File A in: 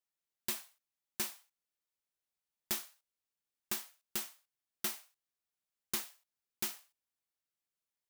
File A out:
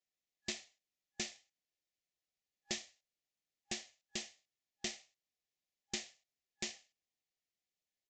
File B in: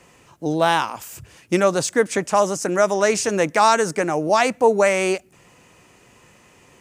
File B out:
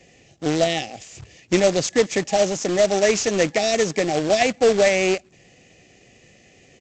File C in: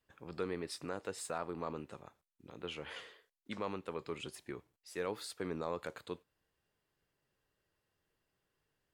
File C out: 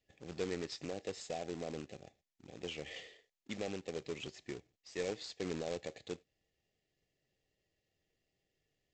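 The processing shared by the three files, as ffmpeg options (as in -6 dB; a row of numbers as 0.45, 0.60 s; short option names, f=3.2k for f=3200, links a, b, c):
-af "afftfilt=real='re*(1-between(b*sr/4096,810,1700))':imag='im*(1-between(b*sr/4096,810,1700))':win_size=4096:overlap=0.75,aresample=16000,acrusher=bits=2:mode=log:mix=0:aa=0.000001,aresample=44100"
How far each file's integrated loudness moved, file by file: -4.5, -0.5, -0.5 LU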